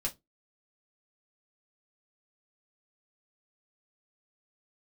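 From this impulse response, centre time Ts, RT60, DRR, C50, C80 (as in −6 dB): 9 ms, non-exponential decay, −1.5 dB, 20.5 dB, 32.0 dB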